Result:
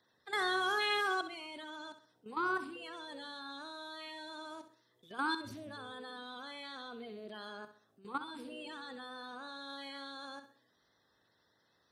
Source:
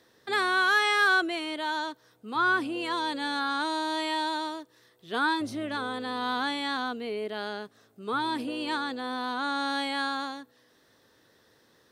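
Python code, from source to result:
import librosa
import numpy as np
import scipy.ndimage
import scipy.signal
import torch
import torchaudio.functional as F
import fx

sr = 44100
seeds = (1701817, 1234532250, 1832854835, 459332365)

y = fx.spec_quant(x, sr, step_db=30)
y = fx.level_steps(y, sr, step_db=14)
y = fx.echo_feedback(y, sr, ms=65, feedback_pct=39, wet_db=-11.5)
y = y * 10.0 ** (-5.0 / 20.0)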